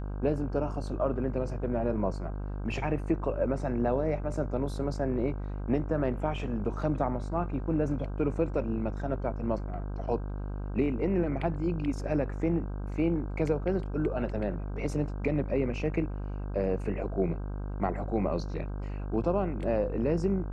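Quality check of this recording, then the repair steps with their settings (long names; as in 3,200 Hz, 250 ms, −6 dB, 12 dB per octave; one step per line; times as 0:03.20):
mains buzz 50 Hz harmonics 32 −35 dBFS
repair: hum removal 50 Hz, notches 32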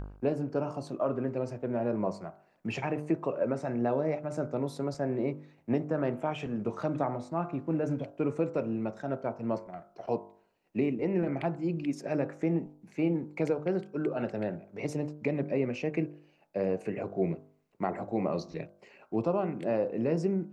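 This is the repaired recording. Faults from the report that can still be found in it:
none of them is left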